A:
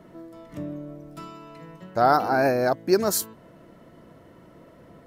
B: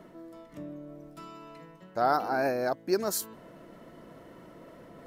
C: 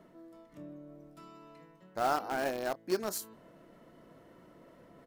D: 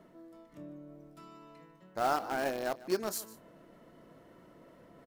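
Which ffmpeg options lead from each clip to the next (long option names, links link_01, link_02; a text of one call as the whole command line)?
ffmpeg -i in.wav -af "equalizer=frequency=88:width=0.89:gain=-7.5,areverse,acompressor=mode=upward:threshold=-34dB:ratio=2.5,areverse,volume=-6.5dB" out.wav
ffmpeg -i in.wav -filter_complex "[0:a]asplit=2[link_01][link_02];[link_02]adelay=27,volume=-12.5dB[link_03];[link_01][link_03]amix=inputs=2:normalize=0,asplit=2[link_04][link_05];[link_05]acrusher=bits=3:mix=0:aa=0.000001,volume=-9dB[link_06];[link_04][link_06]amix=inputs=2:normalize=0,volume=-7.5dB" out.wav
ffmpeg -i in.wav -af "aecho=1:1:149:0.119" out.wav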